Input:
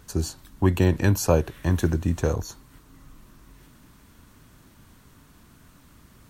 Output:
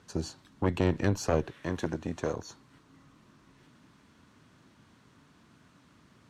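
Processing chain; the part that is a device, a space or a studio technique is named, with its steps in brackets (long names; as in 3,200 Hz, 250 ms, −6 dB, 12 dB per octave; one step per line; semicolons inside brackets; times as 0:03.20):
valve radio (band-pass filter 120–5,600 Hz; tube saturation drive 13 dB, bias 0.75; saturating transformer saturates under 300 Hz)
0:01.52–0:02.47: low-shelf EQ 160 Hz −9 dB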